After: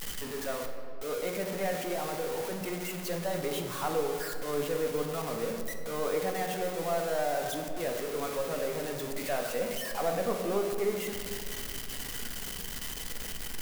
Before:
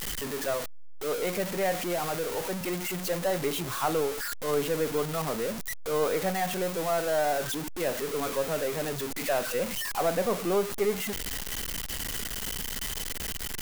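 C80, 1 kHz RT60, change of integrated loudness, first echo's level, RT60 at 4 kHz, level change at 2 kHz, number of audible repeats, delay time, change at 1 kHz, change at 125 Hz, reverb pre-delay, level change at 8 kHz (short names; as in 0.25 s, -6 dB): 7.0 dB, 1.8 s, -3.5 dB, none, 1.2 s, -4.0 dB, none, none, -3.5 dB, -4.0 dB, 4 ms, -5.0 dB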